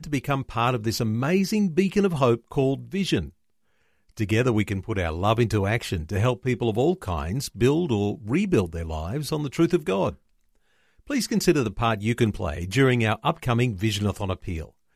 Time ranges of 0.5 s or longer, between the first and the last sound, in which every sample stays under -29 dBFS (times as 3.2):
3.24–4.19
10.11–11.1